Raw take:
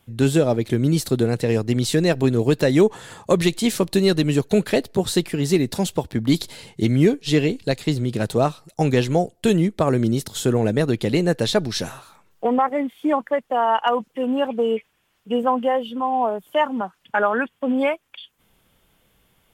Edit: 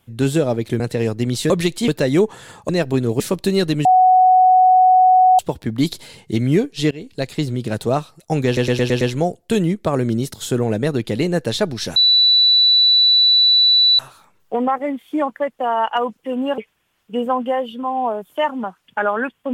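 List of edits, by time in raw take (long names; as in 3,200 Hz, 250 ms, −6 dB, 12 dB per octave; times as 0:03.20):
0:00.80–0:01.29: remove
0:01.99–0:02.50: swap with 0:03.31–0:03.69
0:04.34–0:05.88: beep over 742 Hz −8 dBFS
0:07.40–0:07.78: fade in linear, from −23.5 dB
0:08.95: stutter 0.11 s, 6 plays
0:11.90: insert tone 3,960 Hz −9.5 dBFS 2.03 s
0:14.49–0:14.75: remove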